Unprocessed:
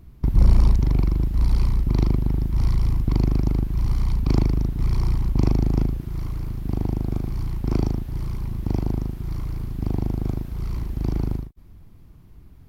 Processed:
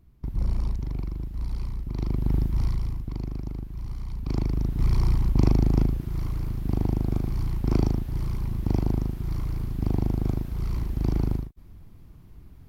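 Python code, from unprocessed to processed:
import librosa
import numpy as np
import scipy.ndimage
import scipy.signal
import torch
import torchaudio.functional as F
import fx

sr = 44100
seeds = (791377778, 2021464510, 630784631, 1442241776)

y = fx.gain(x, sr, db=fx.line((1.94, -11.0), (2.36, 0.0), (3.11, -12.0), (4.08, -12.0), (4.8, -0.5)))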